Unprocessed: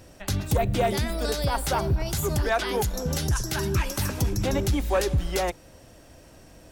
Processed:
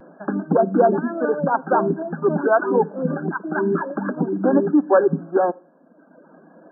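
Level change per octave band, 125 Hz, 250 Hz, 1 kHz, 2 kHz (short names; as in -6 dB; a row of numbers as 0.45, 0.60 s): -4.0, +10.0, +7.5, +3.5 dB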